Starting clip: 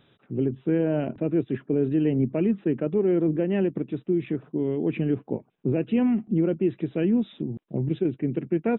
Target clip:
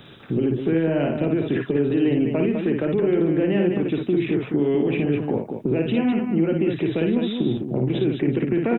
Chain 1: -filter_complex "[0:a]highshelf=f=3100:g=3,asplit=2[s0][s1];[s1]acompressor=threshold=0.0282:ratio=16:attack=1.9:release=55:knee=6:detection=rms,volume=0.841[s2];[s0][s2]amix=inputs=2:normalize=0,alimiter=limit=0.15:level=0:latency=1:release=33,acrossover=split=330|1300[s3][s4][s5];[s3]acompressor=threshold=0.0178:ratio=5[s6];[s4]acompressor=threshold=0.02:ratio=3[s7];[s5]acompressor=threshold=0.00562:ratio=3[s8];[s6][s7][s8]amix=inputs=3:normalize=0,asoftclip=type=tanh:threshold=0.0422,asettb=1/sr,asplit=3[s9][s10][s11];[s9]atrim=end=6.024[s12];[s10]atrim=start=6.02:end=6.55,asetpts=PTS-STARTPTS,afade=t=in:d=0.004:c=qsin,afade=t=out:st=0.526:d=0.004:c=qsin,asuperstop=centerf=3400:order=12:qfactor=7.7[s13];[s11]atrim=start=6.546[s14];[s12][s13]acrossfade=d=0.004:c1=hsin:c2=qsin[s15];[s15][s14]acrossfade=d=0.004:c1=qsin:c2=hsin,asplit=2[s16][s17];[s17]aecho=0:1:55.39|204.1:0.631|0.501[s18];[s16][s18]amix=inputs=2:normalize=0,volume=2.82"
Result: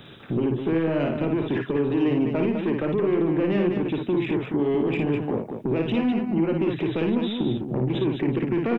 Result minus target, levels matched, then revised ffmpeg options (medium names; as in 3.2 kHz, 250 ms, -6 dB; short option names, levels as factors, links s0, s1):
saturation: distortion +17 dB; compression: peak gain reduction +7.5 dB
-filter_complex "[0:a]highshelf=f=3100:g=3,asplit=2[s0][s1];[s1]acompressor=threshold=0.0708:ratio=16:attack=1.9:release=55:knee=6:detection=rms,volume=0.841[s2];[s0][s2]amix=inputs=2:normalize=0,alimiter=limit=0.15:level=0:latency=1:release=33,acrossover=split=330|1300[s3][s4][s5];[s3]acompressor=threshold=0.0178:ratio=5[s6];[s4]acompressor=threshold=0.02:ratio=3[s7];[s5]acompressor=threshold=0.00562:ratio=3[s8];[s6][s7][s8]amix=inputs=3:normalize=0,asoftclip=type=tanh:threshold=0.141,asettb=1/sr,asplit=3[s9][s10][s11];[s9]atrim=end=6.024[s12];[s10]atrim=start=6.02:end=6.55,asetpts=PTS-STARTPTS,afade=t=in:d=0.004:c=qsin,afade=t=out:st=0.526:d=0.004:c=qsin,asuperstop=centerf=3400:order=12:qfactor=7.7[s13];[s11]atrim=start=6.546[s14];[s12][s13]acrossfade=d=0.004:c1=hsin:c2=qsin[s15];[s15][s14]acrossfade=d=0.004:c1=qsin:c2=hsin,asplit=2[s16][s17];[s17]aecho=0:1:55.39|204.1:0.631|0.501[s18];[s16][s18]amix=inputs=2:normalize=0,volume=2.82"